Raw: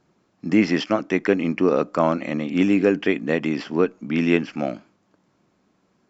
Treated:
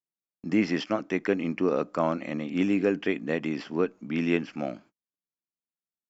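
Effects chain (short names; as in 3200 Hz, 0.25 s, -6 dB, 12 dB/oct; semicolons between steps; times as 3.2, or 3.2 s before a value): gate -45 dBFS, range -37 dB; gain -6.5 dB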